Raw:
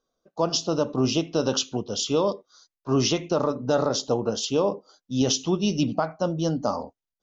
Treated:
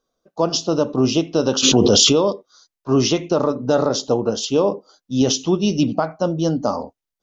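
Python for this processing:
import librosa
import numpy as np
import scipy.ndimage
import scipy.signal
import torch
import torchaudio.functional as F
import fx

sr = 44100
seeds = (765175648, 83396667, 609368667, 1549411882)

y = fx.dynamic_eq(x, sr, hz=340.0, q=0.9, threshold_db=-34.0, ratio=4.0, max_db=3)
y = fx.env_flatten(y, sr, amount_pct=100, at=(1.62, 2.12), fade=0.02)
y = y * librosa.db_to_amplitude(3.5)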